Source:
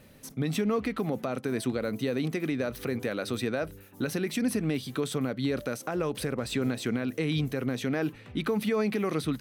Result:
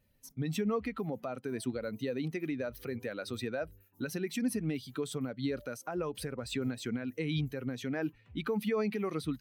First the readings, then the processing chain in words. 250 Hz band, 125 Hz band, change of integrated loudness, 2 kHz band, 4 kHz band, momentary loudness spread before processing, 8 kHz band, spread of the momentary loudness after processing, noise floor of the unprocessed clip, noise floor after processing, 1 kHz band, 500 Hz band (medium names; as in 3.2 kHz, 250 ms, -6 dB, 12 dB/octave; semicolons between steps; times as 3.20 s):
-5.5 dB, -5.5 dB, -5.5 dB, -6.0 dB, -6.0 dB, 5 LU, -5.5 dB, 6 LU, -51 dBFS, -66 dBFS, -5.5 dB, -5.5 dB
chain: expander on every frequency bin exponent 1.5; trim -2.5 dB